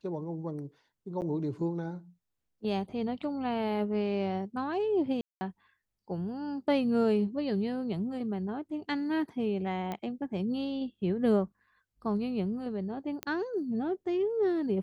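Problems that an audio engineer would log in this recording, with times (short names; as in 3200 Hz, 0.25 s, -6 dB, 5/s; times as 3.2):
1.21–1.22 gap 9 ms
5.21–5.41 gap 0.2 s
9.92 pop -22 dBFS
13.23 pop -18 dBFS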